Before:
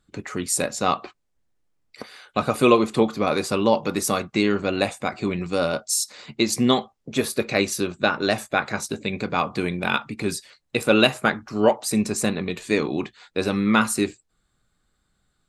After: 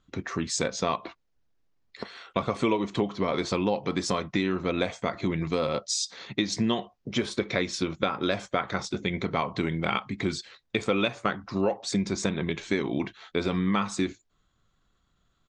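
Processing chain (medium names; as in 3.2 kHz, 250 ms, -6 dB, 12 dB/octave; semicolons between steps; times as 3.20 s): pitch shift -1.5 st; low-pass 6.1 kHz 24 dB/octave; compression 4:1, threshold -23 dBFS, peak gain reduction 11 dB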